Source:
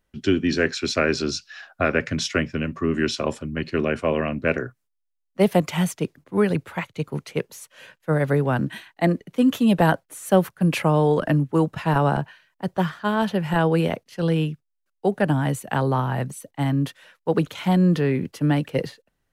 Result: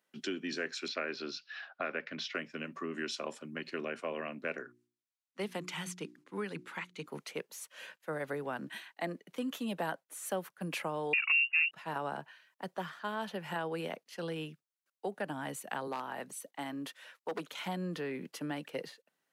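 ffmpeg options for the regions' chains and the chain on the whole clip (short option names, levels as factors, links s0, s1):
-filter_complex "[0:a]asettb=1/sr,asplit=3[s0][s1][s2];[s0]atrim=end=0.884[s3];[s1]atrim=start=0.88:end=2.35,asetpts=PTS-STARTPTS,afade=t=in:d=0.004:c=qsin,afade=t=out:st=1.466:d=0.004:c=qsin,lowpass=f=4400:w=0.5412,lowpass=f=4400:w=1.3066,lowshelf=f=79:g=-10[s4];[s2]atrim=start=2.346[s5];[s3][s4]acrossfade=d=0.004:c1=hsin:c2=qsin[s6];[s6][s5]acrossfade=d=0.004:c1=qsin:c2=hsin,asettb=1/sr,asplit=3[s7][s8][s9];[s7]atrim=end=4.624[s10];[s8]atrim=start=4.62:end=7.06,asetpts=PTS-STARTPTS,afade=t=in:d=0.004:c=qsin,afade=t=out:st=2.436:d=0.004:c=qsin,lowpass=9400,equalizer=f=640:w=2:g=-10.5,bandreject=f=60:t=h:w=6,bandreject=f=120:t=h:w=6,bandreject=f=180:t=h:w=6,bandreject=f=240:t=h:w=6,bandreject=f=300:t=h:w=6,bandreject=f=360:t=h:w=6[s11];[s9]atrim=start=7.056[s12];[s10][s11]acrossfade=d=0.004:c1=hsin:c2=qsin[s13];[s13][s12]acrossfade=d=0.004:c1=qsin:c2=hsin,asettb=1/sr,asplit=3[s14][s15][s16];[s14]atrim=end=11.134[s17];[s15]atrim=start=11.13:end=11.71,asetpts=PTS-STARTPTS,afade=t=in:d=0.004:c=qsin,afade=t=out:st=0.576:d=0.004:c=qsin,lowshelf=f=490:g=10.5,acontrast=62,lowpass=f=2500:t=q:w=0.5098,lowpass=f=2500:t=q:w=0.6013,lowpass=f=2500:t=q:w=0.9,lowpass=f=2500:t=q:w=2.563,afreqshift=-2900[s18];[s16]atrim=start=11.706[s19];[s17][s18]acrossfade=d=0.004:c1=hsin:c2=qsin[s20];[s20][s19]acrossfade=d=0.004:c1=qsin:c2=hsin,asettb=1/sr,asplit=3[s21][s22][s23];[s21]atrim=end=15.874[s24];[s22]atrim=start=15.87:end=17.52,asetpts=PTS-STARTPTS,afade=t=in:d=0.004:c=qsin,afade=t=out:st=1.646:d=0.004:c=qsin,highpass=190,aeval=exprs='0.188*(abs(mod(val(0)/0.188+3,4)-2)-1)':c=same[s25];[s23]atrim=start=17.516[s26];[s24][s25]acrossfade=d=0.004:c1=hsin:c2=qsin[s27];[s27][s26]acrossfade=d=0.004:c1=qsin:c2=hsin,highpass=f=170:w=0.5412,highpass=f=170:w=1.3066,lowshelf=f=370:g=-10,acompressor=threshold=0.01:ratio=2,volume=0.794"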